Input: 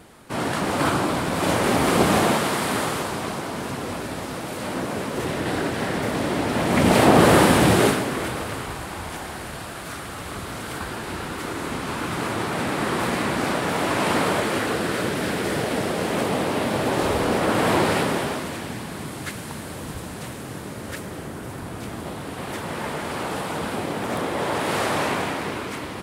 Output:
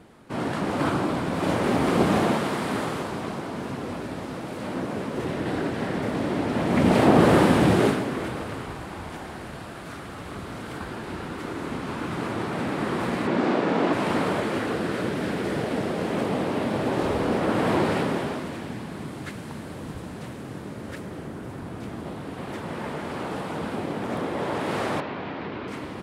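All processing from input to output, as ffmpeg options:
-filter_complex "[0:a]asettb=1/sr,asplit=3[a][b][c];[a]atrim=end=13.274[d];[b]atrim=start=13.27:end=13.93,asetpts=PTS-STARTPTS,afade=t=in:d=0.004:c=qsin,afade=t=out:st=0.656:d=0.004:c=qsin,highpass=280,lowpass=5.9k,lowshelf=f=410:g=11,asplit=2[e][f];[f]adelay=49,volume=-5.5dB[g];[e][g]amix=inputs=2:normalize=0,atrim=end_sample=29106[h];[c]atrim=start=13.926[i];[d][h]acrossfade=d=0.004:c1=hsin:c2=qsin[j];[j][i]acrossfade=d=0.004:c1=qsin:c2=hsin,asettb=1/sr,asplit=3[k][l][m];[k]atrim=end=25.004[n];[l]atrim=start=25:end=25.68,asetpts=PTS-STARTPTS,afade=t=in:d=0.004:c=qsin,afade=t=out:st=0.676:d=0.004:c=qsin,lowpass=f=4.4k:w=0.5412,lowpass=f=4.4k:w=1.3066,acompressor=threshold=-26dB:ratio=4:attack=3.2:release=140:knee=1:detection=peak[o];[m]atrim=start=25.676[p];[n][o]acrossfade=d=0.004:c1=hsin:c2=qsin[q];[q][p]acrossfade=d=0.004:c1=qsin:c2=hsin,lowpass=f=4k:p=1,equalizer=f=230:t=o:w=2.3:g=4.5,volume=-5dB"

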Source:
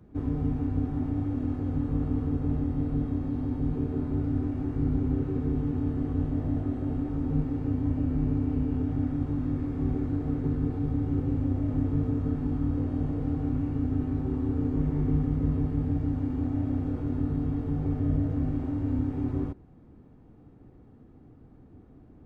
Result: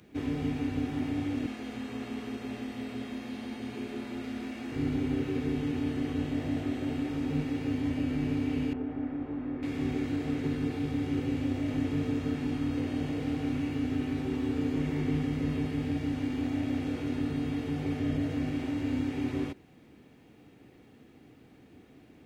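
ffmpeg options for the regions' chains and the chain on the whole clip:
-filter_complex "[0:a]asettb=1/sr,asplit=3[a][b][c];[a]atrim=end=1.464[d];[b]atrim=start=1.46:end=4.72,asetpts=PTS-STARTPTS,afade=t=in:d=0.004:c=qsin,afade=t=out:st=3.256:d=0.004:c=qsin,highpass=f=440:p=1,afreqshift=-29[e];[c]atrim=start=4.716[f];[d][e]acrossfade=d=0.004:c1=hsin:c2=qsin[g];[g][f]acrossfade=d=0.004:c1=qsin:c2=hsin,asettb=1/sr,asplit=3[h][i][j];[h]atrim=end=8.734[k];[i]atrim=start=8.73:end=9.63,asetpts=PTS-STARTPTS,afade=t=in:d=0.004:c=qsin,afade=t=out:st=0.896:d=0.004:c=qsin,lowpass=1.2k,equalizer=f=120:t=o:w=1.5:g=-10.5[l];[j]atrim=start=9.626[m];[k][l]acrossfade=d=0.004:c1=hsin:c2=qsin[n];[n][m]acrossfade=d=0.004:c1=qsin:c2=hsin,highpass=f=380:p=1,highshelf=f=1.7k:t=q:w=1.5:g=11,volume=4dB"

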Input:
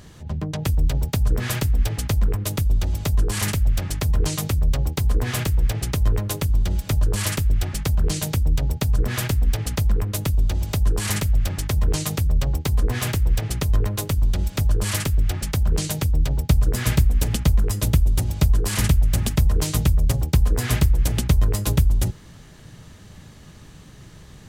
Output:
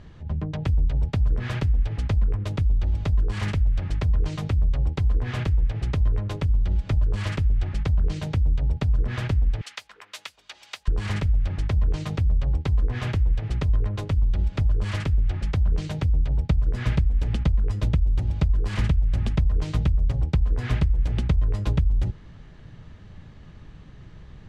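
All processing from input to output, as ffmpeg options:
-filter_complex "[0:a]asettb=1/sr,asplit=3[a][b][c];[a]atrim=end=9.614[d];[b]atrim=start=9.61:end=10.88,asetpts=PTS-STARTPTS,afade=t=in:d=0.004:c=qsin,afade=t=out:st=1.266:d=0.004:c=qsin,highpass=920,tiltshelf=f=1.4k:g=-8[e];[c]atrim=start=10.876[f];[d][e]acrossfade=d=0.004:c1=hsin:c2=qsin[g];[g][f]acrossfade=d=0.004:c1=qsin:c2=hsin,lowshelf=f=77:g=9.5,acompressor=threshold=-13dB:ratio=6,lowpass=3.1k,volume=-4dB"

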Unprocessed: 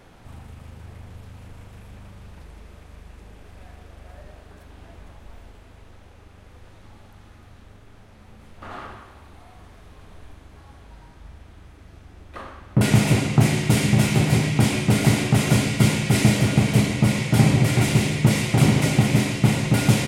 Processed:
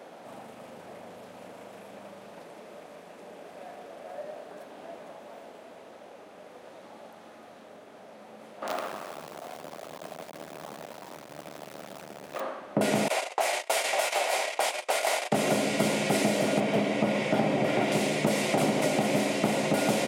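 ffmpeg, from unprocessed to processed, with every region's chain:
-filter_complex "[0:a]asettb=1/sr,asplit=3[a][b][c];[a]atrim=end=8.674[d];[b]atrim=start=8.67:end=12.41,asetpts=PTS-STARTPTS,afade=t=in:d=0.004:c=qsin,afade=t=out:st=3.736:d=0.004:c=qsin,aeval=exprs='val(0)+0.5*0.0126*sgn(val(0))':c=same,equalizer=f=82:t=o:w=0.38:g=14,acrusher=bits=5:dc=4:mix=0:aa=0.000001[e];[c]atrim=start=12.406[f];[d][e]acrossfade=d=0.004:c1=hsin:c2=qsin[g];[g][f]acrossfade=d=0.004:c1=qsin:c2=hsin,asettb=1/sr,asplit=3[h][i][j];[h]atrim=end=13.084[k];[i]atrim=start=13.08:end=15.32,asetpts=PTS-STARTPTS,afade=t=in:d=0.004:c=qsin,afade=t=out:st=2.236:d=0.004:c=qsin,agate=range=-25dB:threshold=-23dB:ratio=16:release=100:detection=peak,highpass=f=620:w=0.5412,highpass=f=620:w=1.3066[l];[j]atrim=start=15.316[m];[k][l]acrossfade=d=0.004:c1=hsin:c2=qsin[n];[n][m]acrossfade=d=0.004:c1=qsin:c2=hsin,asettb=1/sr,asplit=3[o][p][q];[o]atrim=end=16.604[r];[p]atrim=start=16.6:end=17.92,asetpts=PTS-STARTPTS,afade=t=in:d=0.004:c=qsin,afade=t=out:st=1.316:d=0.004:c=qsin,acrossover=split=4400[s][t];[t]acompressor=threshold=-47dB:ratio=4:attack=1:release=60[u];[s][u]amix=inputs=2:normalize=0,bandreject=f=4.2k:w=14[v];[q]atrim=start=17.916[w];[r][v]acrossfade=d=0.004:c1=hsin:c2=qsin[x];[x][w]acrossfade=d=0.004:c1=qsin:c2=hsin,highpass=f=200:w=0.5412,highpass=f=200:w=1.3066,equalizer=f=610:t=o:w=0.86:g=11.5,acompressor=threshold=-23dB:ratio=4"

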